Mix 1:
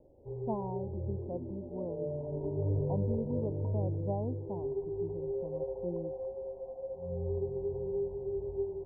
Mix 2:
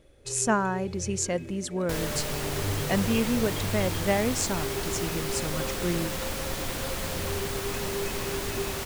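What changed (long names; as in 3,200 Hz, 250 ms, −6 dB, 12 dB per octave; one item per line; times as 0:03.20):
speech +10.5 dB
second sound: unmuted
master: remove Butterworth low-pass 970 Hz 96 dB per octave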